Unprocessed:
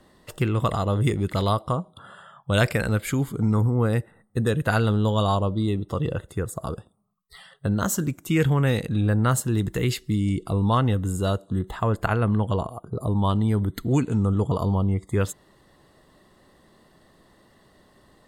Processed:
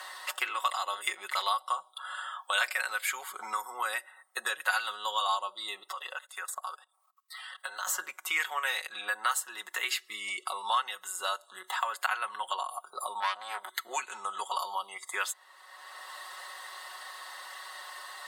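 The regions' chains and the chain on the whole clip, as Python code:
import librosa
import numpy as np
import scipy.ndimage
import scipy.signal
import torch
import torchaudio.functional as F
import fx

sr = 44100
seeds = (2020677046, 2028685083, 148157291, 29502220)

y = fx.chain(x, sr, fx.highpass(hz=540.0, slope=12),
    fx.level_steps(step_db=21), at=(5.92, 7.87))
y = fx.chain(y, sr, fx.highpass(hz=260.0, slope=12),
    fx.high_shelf(hz=9200.0, db=-4.5),
    fx.transformer_sat(knee_hz=1200.0), at=(13.2, 13.75))
y = scipy.signal.sosfilt(scipy.signal.butter(4, 910.0, 'highpass', fs=sr, output='sos'), y)
y = y + 0.72 * np.pad(y, (int(5.4 * sr / 1000.0), 0))[:len(y)]
y = fx.band_squash(y, sr, depth_pct=70)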